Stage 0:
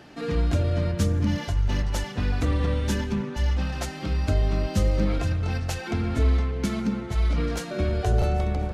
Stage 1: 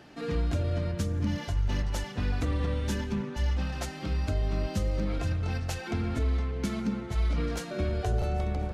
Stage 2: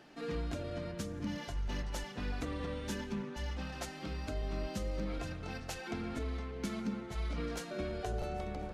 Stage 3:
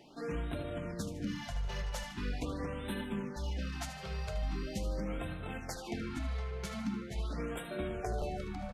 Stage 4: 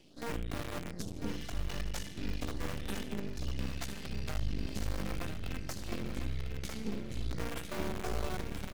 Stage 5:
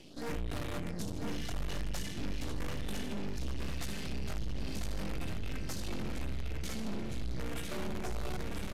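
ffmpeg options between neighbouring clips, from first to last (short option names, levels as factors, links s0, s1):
-af "alimiter=limit=0.178:level=0:latency=1:release=285,volume=0.631"
-af "equalizer=f=87:t=o:w=1.1:g=-12,volume=0.562"
-af "aecho=1:1:76|152|228|304|380:0.299|0.128|0.0552|0.0237|0.0102,afftfilt=real='re*(1-between(b*sr/1024,250*pow(5900/250,0.5+0.5*sin(2*PI*0.42*pts/sr))/1.41,250*pow(5900/250,0.5+0.5*sin(2*PI*0.42*pts/sr))*1.41))':imag='im*(1-between(b*sr/1024,250*pow(5900/250,0.5+0.5*sin(2*PI*0.42*pts/sr))/1.41,250*pow(5900/250,0.5+0.5*sin(2*PI*0.42*pts/sr))*1.41))':win_size=1024:overlap=0.75,volume=1.12"
-filter_complex "[0:a]acrossover=split=430|1800[s0][s1][s2];[s1]acrusher=bits=4:dc=4:mix=0:aa=0.000001[s3];[s0][s3][s2]amix=inputs=3:normalize=0,aeval=exprs='max(val(0),0)':c=same,aecho=1:1:999|1998|2997|3996:0.422|0.131|0.0405|0.0126,volume=1.5"
-af "asoftclip=type=tanh:threshold=0.0158,aresample=32000,aresample=44100,volume=2.24"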